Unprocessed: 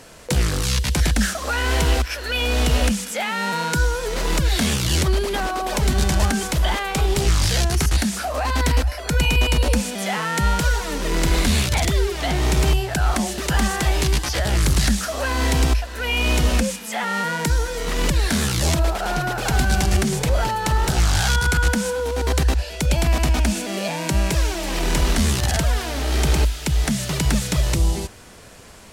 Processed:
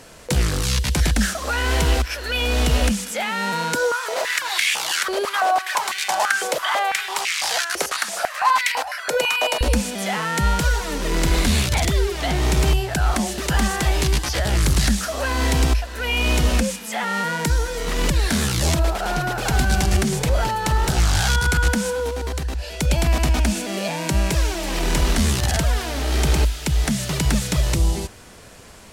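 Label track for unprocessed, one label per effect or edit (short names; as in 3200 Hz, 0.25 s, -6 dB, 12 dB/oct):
3.750000	9.610000	stepped high-pass 6 Hz 530–2200 Hz
22.090000	22.750000	compressor, threshold -22 dBFS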